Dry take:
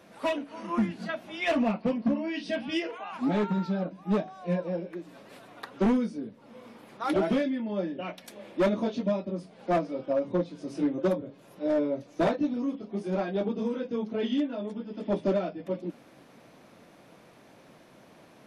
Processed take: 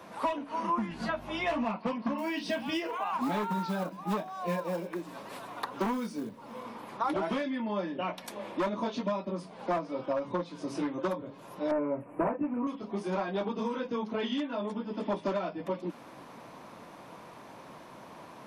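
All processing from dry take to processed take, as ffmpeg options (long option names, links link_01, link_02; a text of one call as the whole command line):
ffmpeg -i in.wav -filter_complex "[0:a]asettb=1/sr,asplit=3[link_01][link_02][link_03];[link_01]atrim=end=0.904[link_04];[link_02]atrim=start=0.9:end=1.65,asetpts=PTS-STARTPTS,afade=type=in:duration=0.004:curve=qsin,afade=type=out:start_time=0.746:duration=0.004:curve=qsin,aeval=exprs='val(0)+0.00562*(sin(2*PI*50*n/s)+sin(2*PI*2*50*n/s)/2+sin(2*PI*3*50*n/s)/3+sin(2*PI*4*50*n/s)/4+sin(2*PI*5*50*n/s)/5)':channel_layout=same,asplit=2[link_05][link_06];[link_06]adelay=13,volume=-5dB[link_07];[link_05][link_07]amix=inputs=2:normalize=0,atrim=end_sample=33075[link_08];[link_03]atrim=start=1.646[link_09];[link_04][link_08]acrossfade=duration=0.004:curve1=hsin:curve2=qsin[link_10];[link_10][link_09]acrossfade=duration=0.004:curve1=qsin:curve2=hsin,asettb=1/sr,asplit=3[link_11][link_12][link_13];[link_11]atrim=end=2.184[link_14];[link_12]atrim=start=2.18:end=6.63,asetpts=PTS-STARTPTS,afade=type=in:duration=0.004:curve=qsin,afade=type=out:start_time=4.446:duration=0.004:curve=qsin,highshelf=frequency=5300:gain=5,acrusher=bits=7:mode=log:mix=0:aa=0.000001[link_15];[link_13]atrim=start=6.626[link_16];[link_14][link_15]acrossfade=duration=0.004:curve1=hsin:curve2=qsin[link_17];[link_17][link_16]acrossfade=duration=0.004:curve1=qsin:curve2=hsin,asettb=1/sr,asplit=3[link_18][link_19][link_20];[link_18]atrim=end=11.714[link_21];[link_19]atrim=start=11.71:end=12.67,asetpts=PTS-STARTPTS,afade=type=in:duration=0.004:curve=qsin,afade=type=out:start_time=0.956:duration=0.004:curve=qsin,asuperstop=centerf=4800:order=12:qfactor=0.9,tiltshelf=frequency=1100:gain=6.5[link_22];[link_20]atrim=start=12.666[link_23];[link_21][link_22]acrossfade=duration=0.004:curve1=hsin:curve2=qsin[link_24];[link_24][link_23]acrossfade=duration=0.004:curve1=qsin:curve2=hsin,equalizer=frequency=1000:width=2.4:gain=10.5,acrossover=split=140|1000[link_25][link_26][link_27];[link_25]acompressor=threshold=-55dB:ratio=4[link_28];[link_26]acompressor=threshold=-36dB:ratio=4[link_29];[link_27]acompressor=threshold=-40dB:ratio=4[link_30];[link_28][link_29][link_30]amix=inputs=3:normalize=0,volume=3.5dB" out.wav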